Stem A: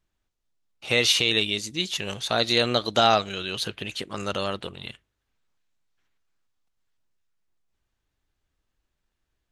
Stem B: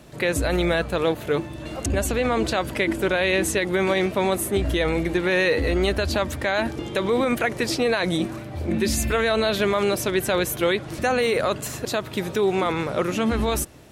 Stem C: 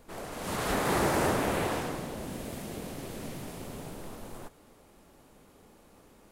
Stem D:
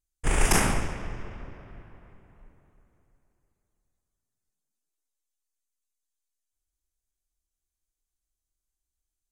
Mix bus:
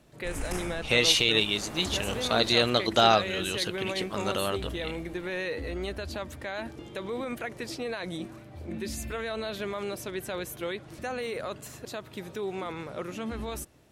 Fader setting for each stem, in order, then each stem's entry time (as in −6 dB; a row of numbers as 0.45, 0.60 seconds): −1.5, −12.5, −13.5, −14.5 decibels; 0.00, 0.00, 0.90, 0.00 seconds